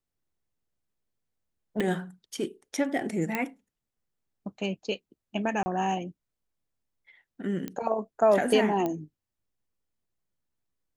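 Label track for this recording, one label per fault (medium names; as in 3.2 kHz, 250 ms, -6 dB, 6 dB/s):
1.800000	1.800000	pop -18 dBFS
3.350000	3.350000	pop -14 dBFS
5.630000	5.660000	dropout 30 ms
7.680000	7.680000	pop -20 dBFS
8.860000	8.860000	pop -17 dBFS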